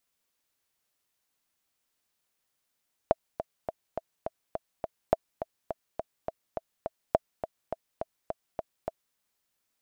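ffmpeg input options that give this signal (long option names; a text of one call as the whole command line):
ffmpeg -f lavfi -i "aevalsrc='pow(10,(-7.5-11*gte(mod(t,7*60/208),60/208))/20)*sin(2*PI*652*mod(t,60/208))*exp(-6.91*mod(t,60/208)/0.03)':duration=6.05:sample_rate=44100" out.wav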